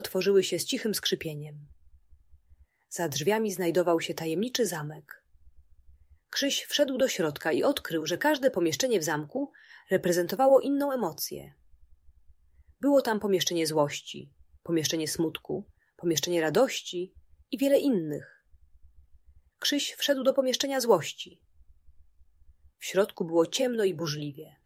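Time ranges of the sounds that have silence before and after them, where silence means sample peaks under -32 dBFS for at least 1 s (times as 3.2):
2.93–5.11
6.33–11.39
12.83–18.18
19.62–21.23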